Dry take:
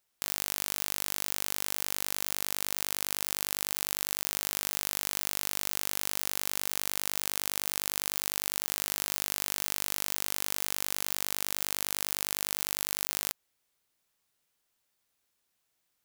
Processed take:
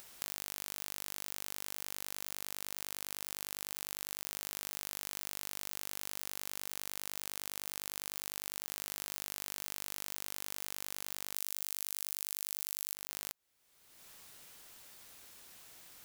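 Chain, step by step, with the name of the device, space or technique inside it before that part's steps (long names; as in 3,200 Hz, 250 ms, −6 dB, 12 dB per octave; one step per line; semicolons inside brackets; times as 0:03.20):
0:11.35–0:12.95: high-shelf EQ 3,400 Hz +11.5 dB
upward and downward compression (upward compression, threshold −39 dBFS; downward compressor 4 to 1, threshold −37 dBFS, peak gain reduction 18.5 dB)
level +1.5 dB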